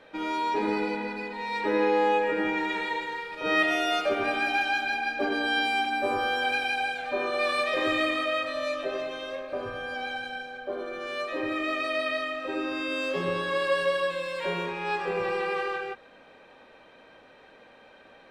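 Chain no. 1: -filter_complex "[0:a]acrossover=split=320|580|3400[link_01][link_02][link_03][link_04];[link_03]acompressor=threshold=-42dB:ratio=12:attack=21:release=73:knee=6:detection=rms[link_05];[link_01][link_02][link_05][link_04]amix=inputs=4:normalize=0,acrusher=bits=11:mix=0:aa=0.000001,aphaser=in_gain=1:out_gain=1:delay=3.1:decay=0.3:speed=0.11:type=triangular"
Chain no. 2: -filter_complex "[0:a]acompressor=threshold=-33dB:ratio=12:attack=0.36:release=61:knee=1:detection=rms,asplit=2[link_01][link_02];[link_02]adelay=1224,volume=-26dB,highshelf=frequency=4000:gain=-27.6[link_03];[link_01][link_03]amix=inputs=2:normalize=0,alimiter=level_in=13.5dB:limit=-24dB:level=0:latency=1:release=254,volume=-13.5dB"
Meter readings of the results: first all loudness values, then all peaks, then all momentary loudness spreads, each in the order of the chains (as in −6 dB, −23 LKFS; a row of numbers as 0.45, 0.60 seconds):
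−32.5, −45.0 LKFS; −16.5, −37.5 dBFS; 8, 9 LU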